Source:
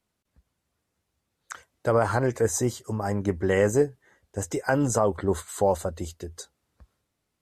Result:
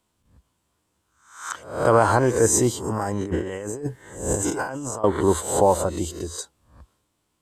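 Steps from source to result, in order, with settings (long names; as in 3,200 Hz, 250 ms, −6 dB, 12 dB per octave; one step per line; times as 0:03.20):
peak hold with a rise ahead of every peak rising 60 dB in 0.53 s
thirty-one-band graphic EQ 315 Hz +5 dB, 1,000 Hz +7 dB, 2,000 Hz −3 dB, 3,150 Hz +4 dB, 8,000 Hz +6 dB
0:02.89–0:05.04: compressor whose output falls as the input rises −31 dBFS, ratio −1
level +3 dB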